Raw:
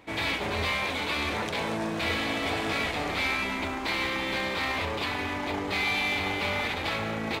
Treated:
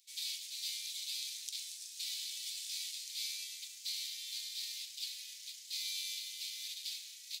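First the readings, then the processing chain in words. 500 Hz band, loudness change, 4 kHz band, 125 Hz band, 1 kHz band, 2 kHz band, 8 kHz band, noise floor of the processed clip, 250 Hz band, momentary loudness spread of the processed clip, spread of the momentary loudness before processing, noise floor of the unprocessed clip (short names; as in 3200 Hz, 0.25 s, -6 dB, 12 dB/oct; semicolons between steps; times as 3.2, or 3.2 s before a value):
under -40 dB, -11.5 dB, -6.0 dB, under -40 dB, under -40 dB, -24.5 dB, +3.5 dB, -52 dBFS, under -40 dB, 4 LU, 4 LU, -33 dBFS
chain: inverse Chebyshev high-pass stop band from 1100 Hz, stop band 70 dB; gain +4 dB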